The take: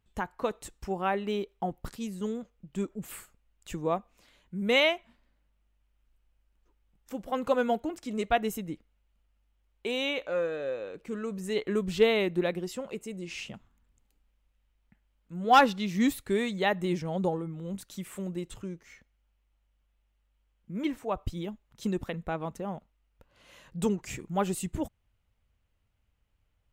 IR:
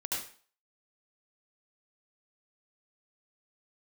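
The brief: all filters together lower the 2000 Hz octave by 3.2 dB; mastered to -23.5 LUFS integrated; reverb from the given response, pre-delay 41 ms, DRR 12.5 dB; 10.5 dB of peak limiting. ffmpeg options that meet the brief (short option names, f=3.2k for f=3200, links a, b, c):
-filter_complex "[0:a]equalizer=f=2k:t=o:g=-4,alimiter=limit=-21dB:level=0:latency=1,asplit=2[a][b];[1:a]atrim=start_sample=2205,adelay=41[c];[b][c]afir=irnorm=-1:irlink=0,volume=-16.5dB[d];[a][d]amix=inputs=2:normalize=0,volume=10.5dB"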